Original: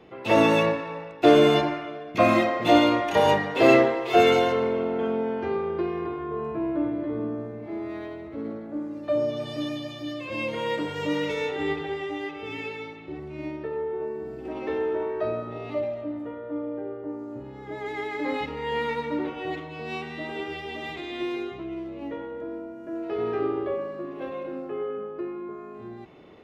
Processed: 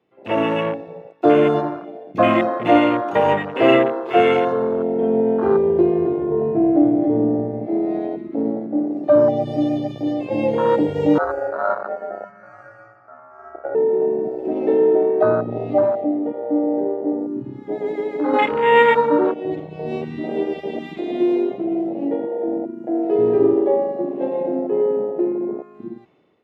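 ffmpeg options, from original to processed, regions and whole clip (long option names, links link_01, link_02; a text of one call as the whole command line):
ffmpeg -i in.wav -filter_complex "[0:a]asettb=1/sr,asplit=3[link_01][link_02][link_03];[link_01]atrim=end=11.184[link_04];[link_02]atrim=start=11.18:end=13.75,asetpts=PTS-STARTPTS,afade=type=in:duration=0.004:curve=qsin,afade=type=out:start_time=2.566:duration=0.004:curve=qsin,aemphasis=mode=reproduction:type=50kf,aeval=exprs='val(0)*sin(2*PI*1000*n/s)':channel_layout=same,asuperstop=centerf=3500:order=4:qfactor=0.73[link_05];[link_03]atrim=start=13.746[link_06];[link_04][link_05]acrossfade=duration=0.004:curve1=hsin:curve2=qsin[link_07];[link_07][link_06]acrossfade=duration=0.004:curve1=qsin:curve2=hsin,asettb=1/sr,asplit=3[link_08][link_09][link_10];[link_08]atrim=end=18.334[link_11];[link_09]atrim=start=18.33:end=19.34,asetpts=PTS-STARTPTS,afade=type=in:duration=0.004:curve=qsin,afade=type=out:start_time=1.006:duration=0.004:curve=qsin,equalizer=frequency=100:width=1.2:gain=-13.5,acontrast=44,asplit=2[link_12][link_13];[link_13]adelay=32,volume=-7.5dB[link_14];[link_12][link_14]amix=inputs=2:normalize=0,atrim=end_sample=44541[link_15];[link_10]atrim=start=19.336[link_16];[link_11][link_15]acrossfade=duration=0.004:curve1=hsin:curve2=qsin[link_17];[link_17][link_16]acrossfade=duration=0.004:curve1=qsin:curve2=hsin,afwtdn=0.0447,highpass=97,dynaudnorm=framelen=190:gausssize=7:maxgain=14dB,volume=-1dB" out.wav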